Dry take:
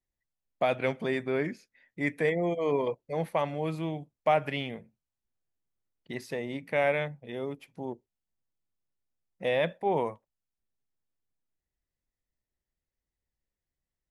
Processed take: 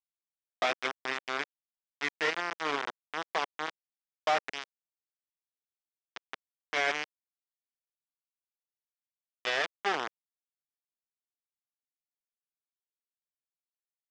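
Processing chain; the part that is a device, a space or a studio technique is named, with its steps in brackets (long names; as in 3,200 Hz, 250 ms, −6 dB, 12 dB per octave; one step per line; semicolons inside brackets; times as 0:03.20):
hand-held game console (bit reduction 4 bits; loudspeaker in its box 470–4,800 Hz, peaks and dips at 560 Hz −9 dB, 910 Hz −3 dB, 2,600 Hz −3 dB, 4,200 Hz −8 dB)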